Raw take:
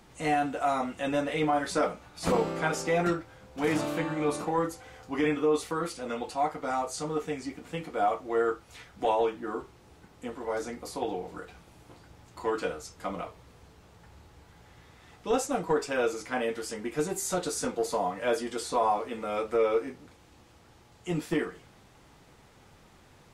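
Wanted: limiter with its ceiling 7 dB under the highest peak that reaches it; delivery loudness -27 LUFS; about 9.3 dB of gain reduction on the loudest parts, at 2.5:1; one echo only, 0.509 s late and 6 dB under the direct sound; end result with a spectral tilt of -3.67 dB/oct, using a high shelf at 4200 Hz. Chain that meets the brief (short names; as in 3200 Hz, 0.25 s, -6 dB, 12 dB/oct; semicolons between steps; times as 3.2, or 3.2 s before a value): high shelf 4200 Hz +5.5 dB; compressor 2.5:1, threshold -36 dBFS; limiter -28 dBFS; echo 0.509 s -6 dB; gain +11 dB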